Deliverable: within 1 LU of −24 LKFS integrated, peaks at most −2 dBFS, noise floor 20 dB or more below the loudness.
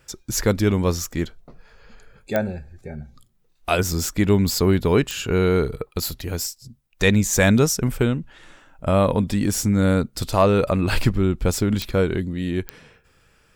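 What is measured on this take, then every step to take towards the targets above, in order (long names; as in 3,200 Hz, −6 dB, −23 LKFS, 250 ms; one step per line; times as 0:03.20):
number of clicks 4; integrated loudness −21.5 LKFS; sample peak −3.5 dBFS; target loudness −24.0 LKFS
→ click removal
level −2.5 dB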